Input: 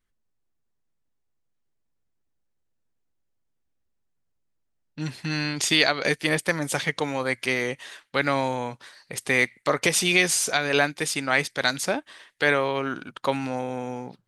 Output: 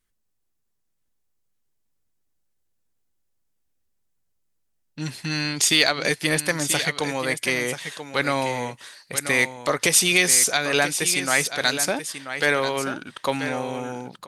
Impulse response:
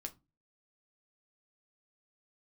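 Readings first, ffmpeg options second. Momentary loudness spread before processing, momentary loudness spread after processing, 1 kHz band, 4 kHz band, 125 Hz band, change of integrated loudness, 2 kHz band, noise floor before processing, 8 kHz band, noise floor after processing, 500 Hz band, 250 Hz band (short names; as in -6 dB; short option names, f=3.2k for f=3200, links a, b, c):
12 LU, 14 LU, +0.5 dB, +3.5 dB, +0.5 dB, +2.5 dB, +1.5 dB, -74 dBFS, +7.5 dB, -73 dBFS, +0.5 dB, +0.5 dB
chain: -filter_complex "[0:a]aecho=1:1:985:0.299,asplit=2[a][b];[b]asoftclip=type=tanh:threshold=-17.5dB,volume=-10dB[c];[a][c]amix=inputs=2:normalize=0,aemphasis=mode=production:type=cd,volume=-1.5dB"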